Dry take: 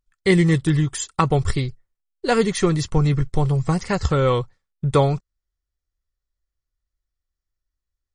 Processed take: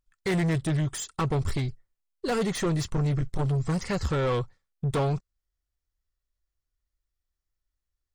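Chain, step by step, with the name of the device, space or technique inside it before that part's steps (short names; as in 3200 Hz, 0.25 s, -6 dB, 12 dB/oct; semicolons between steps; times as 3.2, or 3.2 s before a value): saturation between pre-emphasis and de-emphasis (high shelf 3200 Hz +10.5 dB; soft clip -20.5 dBFS, distortion -8 dB; high shelf 3200 Hz -10.5 dB); gain -1.5 dB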